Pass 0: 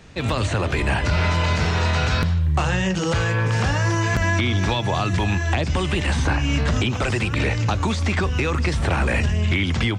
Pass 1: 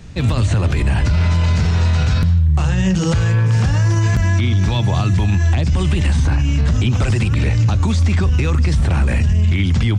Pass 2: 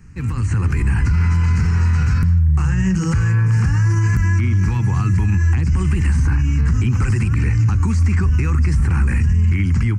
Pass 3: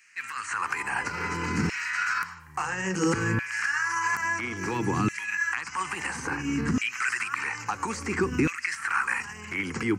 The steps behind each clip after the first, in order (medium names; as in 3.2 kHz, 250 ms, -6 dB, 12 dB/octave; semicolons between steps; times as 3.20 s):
tone controls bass +12 dB, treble +5 dB; peak limiter -8.5 dBFS, peak gain reduction 7.5 dB
level rider gain up to 6.5 dB; static phaser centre 1.5 kHz, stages 4; trim -5.5 dB
LFO high-pass saw down 0.59 Hz 250–2400 Hz